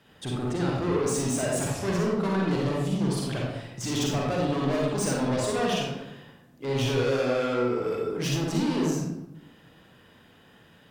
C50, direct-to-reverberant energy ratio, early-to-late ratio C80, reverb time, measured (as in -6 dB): -1.0 dB, -3.0 dB, 3.0 dB, 0.90 s